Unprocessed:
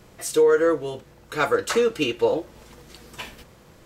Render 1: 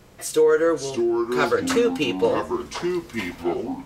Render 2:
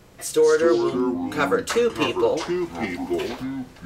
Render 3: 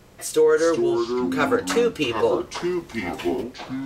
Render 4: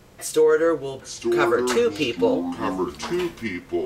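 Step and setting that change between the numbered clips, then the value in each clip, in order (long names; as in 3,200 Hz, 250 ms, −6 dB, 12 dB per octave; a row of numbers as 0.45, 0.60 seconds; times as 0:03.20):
delay with pitch and tempo change per echo, delay time: 483, 138, 283, 762 milliseconds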